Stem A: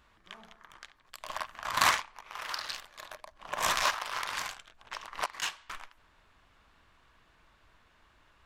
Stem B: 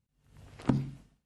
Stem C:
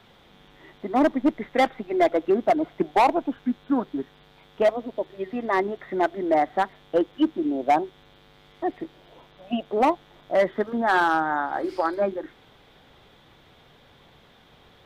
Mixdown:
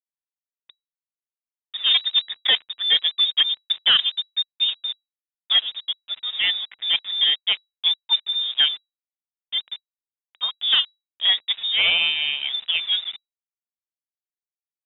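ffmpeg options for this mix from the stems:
-filter_complex "[1:a]acompressor=threshold=0.00891:ratio=1.5,volume=0.188[s0];[2:a]adynamicsmooth=sensitivity=7.5:basefreq=970,adelay=900,volume=1.06[s1];[s0][s1]amix=inputs=2:normalize=0,crystalizer=i=2.5:c=0,aeval=exprs='val(0)*gte(abs(val(0)),0.0141)':c=same,lowpass=f=3300:t=q:w=0.5098,lowpass=f=3300:t=q:w=0.6013,lowpass=f=3300:t=q:w=0.9,lowpass=f=3300:t=q:w=2.563,afreqshift=-3900"

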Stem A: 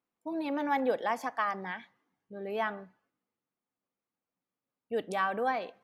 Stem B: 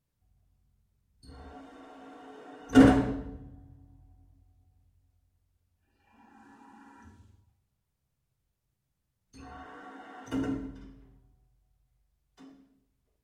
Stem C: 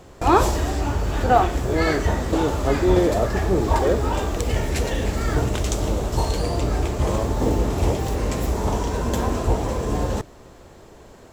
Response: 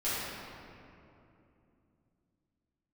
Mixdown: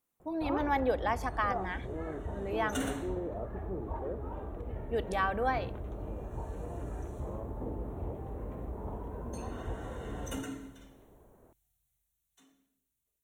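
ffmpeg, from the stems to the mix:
-filter_complex "[0:a]volume=0.944[s0];[1:a]dynaudnorm=f=530:g=9:m=3.76,crystalizer=i=8.5:c=0,volume=0.141[s1];[2:a]lowpass=1100,adelay=200,volume=0.2[s2];[s1][s2]amix=inputs=2:normalize=0,asuperstop=centerf=4900:order=4:qfactor=3.4,acompressor=threshold=0.01:ratio=1.5,volume=1[s3];[s0][s3]amix=inputs=2:normalize=0"

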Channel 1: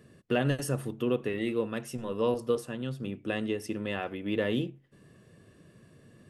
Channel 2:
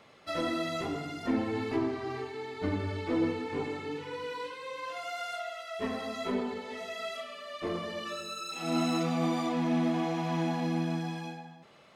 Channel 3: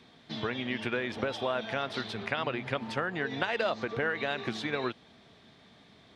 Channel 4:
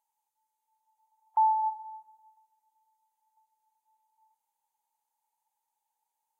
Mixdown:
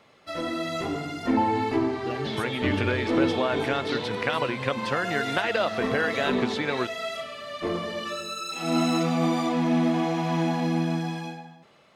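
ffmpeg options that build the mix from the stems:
-filter_complex "[0:a]adelay=1750,volume=0.188[s0];[1:a]volume=1[s1];[2:a]adelay=1950,volume=0.891[s2];[3:a]volume=0.398[s3];[s0][s1][s2][s3]amix=inputs=4:normalize=0,dynaudnorm=f=120:g=11:m=1.88"

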